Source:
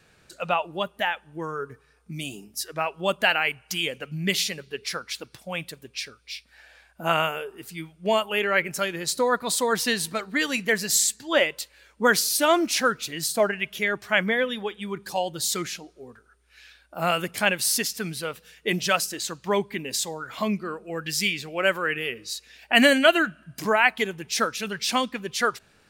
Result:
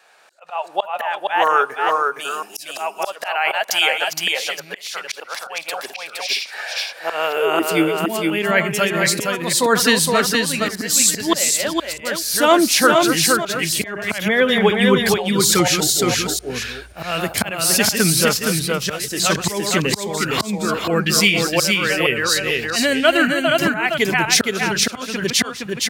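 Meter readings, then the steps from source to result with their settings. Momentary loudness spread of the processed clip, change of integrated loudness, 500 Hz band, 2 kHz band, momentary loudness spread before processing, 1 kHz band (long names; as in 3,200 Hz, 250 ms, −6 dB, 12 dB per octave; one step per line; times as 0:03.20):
12 LU, +7.0 dB, +6.5 dB, +5.5 dB, 14 LU, +7.0 dB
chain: delay that plays each chunk backwards 245 ms, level −10.5 dB
in parallel at −1 dB: downward compressor 12 to 1, threshold −36 dBFS, peak gain reduction 24 dB
on the sum: volume swells 582 ms
automatic gain control gain up to 16 dB
high-pass filter sweep 740 Hz → 82 Hz, 0:06.52–0:09.35
on a send: single-tap delay 466 ms −3.5 dB
on the sum: level −1 dB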